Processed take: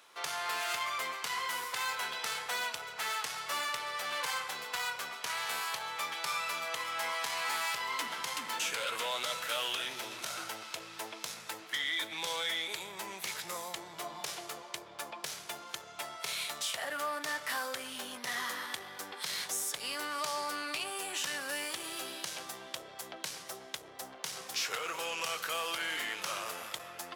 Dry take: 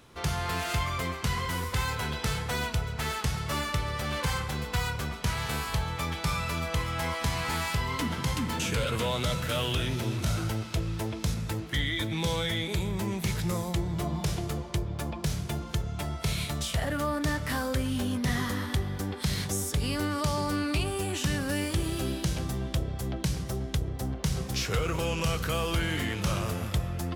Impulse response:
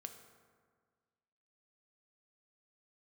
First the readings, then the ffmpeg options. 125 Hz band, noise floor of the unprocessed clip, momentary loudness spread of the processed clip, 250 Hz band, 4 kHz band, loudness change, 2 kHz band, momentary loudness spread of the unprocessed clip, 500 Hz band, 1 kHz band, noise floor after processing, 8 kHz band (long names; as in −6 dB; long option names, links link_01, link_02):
−32.5 dB, −38 dBFS, 9 LU, −20.0 dB, −1.5 dB, −5.5 dB, −1.5 dB, 4 LU, −9.0 dB, −2.5 dB, −50 dBFS, −1.5 dB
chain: -af "asoftclip=type=tanh:threshold=-22dB,aeval=exprs='0.075*(cos(1*acos(clip(val(0)/0.075,-1,1)))-cos(1*PI/2))+0.000944*(cos(8*acos(clip(val(0)/0.075,-1,1)))-cos(8*PI/2))':channel_layout=same,highpass=770"